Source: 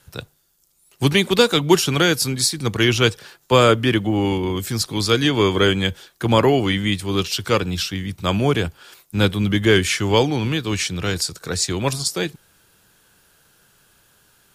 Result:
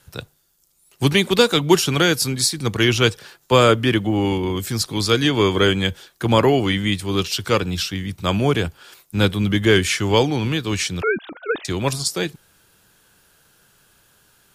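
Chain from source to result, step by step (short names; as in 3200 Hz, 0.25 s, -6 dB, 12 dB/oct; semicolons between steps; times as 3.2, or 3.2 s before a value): 11.02–11.65 sine-wave speech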